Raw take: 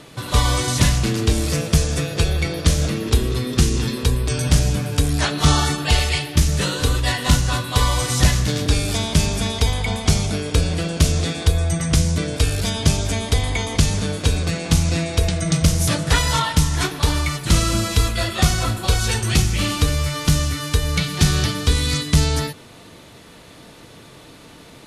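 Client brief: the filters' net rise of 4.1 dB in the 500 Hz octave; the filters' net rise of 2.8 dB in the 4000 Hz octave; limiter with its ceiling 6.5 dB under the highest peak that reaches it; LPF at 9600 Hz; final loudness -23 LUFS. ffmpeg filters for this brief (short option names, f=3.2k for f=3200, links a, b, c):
-af "lowpass=9.6k,equalizer=f=500:t=o:g=5,equalizer=f=4k:t=o:g=3.5,volume=-2.5dB,alimiter=limit=-12dB:level=0:latency=1"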